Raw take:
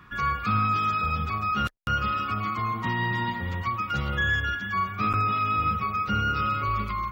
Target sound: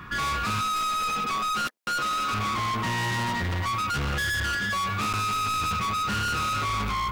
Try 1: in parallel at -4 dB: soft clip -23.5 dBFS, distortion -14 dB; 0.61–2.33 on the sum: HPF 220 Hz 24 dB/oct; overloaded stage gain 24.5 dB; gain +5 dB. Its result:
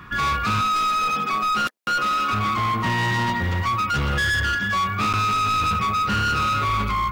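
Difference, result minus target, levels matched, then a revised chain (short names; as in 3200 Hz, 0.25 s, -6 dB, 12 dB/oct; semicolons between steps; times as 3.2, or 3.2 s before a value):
overloaded stage: distortion -4 dB
in parallel at -4 dB: soft clip -23.5 dBFS, distortion -14 dB; 0.61–2.33 on the sum: HPF 220 Hz 24 dB/oct; overloaded stage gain 31 dB; gain +5 dB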